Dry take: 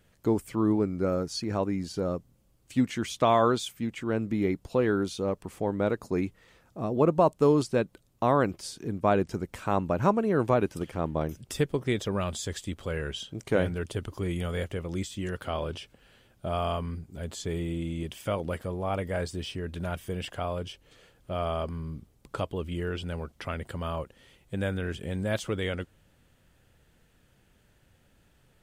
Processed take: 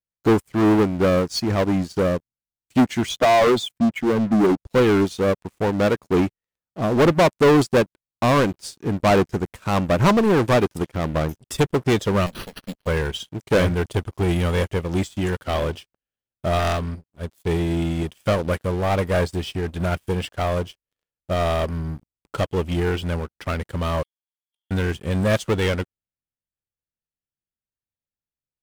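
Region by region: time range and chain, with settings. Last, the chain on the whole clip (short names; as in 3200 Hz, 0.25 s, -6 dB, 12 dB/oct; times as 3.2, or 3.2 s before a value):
3.09–4.67 spectral contrast raised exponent 1.6 + three-band squash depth 40%
12.26–12.87 minimum comb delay 0.69 ms + fixed phaser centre 340 Hz, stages 6 + careless resampling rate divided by 6×, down none, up hold
16.59–17.47 self-modulated delay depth 0.32 ms + upward expander, over -49 dBFS
24.03–24.71 compressor 10:1, threshold -41 dBFS + octave resonator D#, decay 0.19 s + inverted band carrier 3400 Hz
whole clip: sample leveller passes 5; upward expander 2.5:1, over -30 dBFS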